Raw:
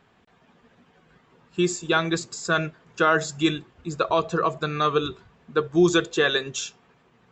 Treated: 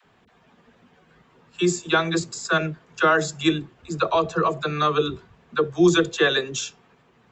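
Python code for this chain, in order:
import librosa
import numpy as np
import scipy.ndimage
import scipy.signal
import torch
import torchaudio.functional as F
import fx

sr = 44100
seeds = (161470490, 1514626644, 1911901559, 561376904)

y = fx.dispersion(x, sr, late='lows', ms=53.0, hz=410.0)
y = y * librosa.db_to_amplitude(1.5)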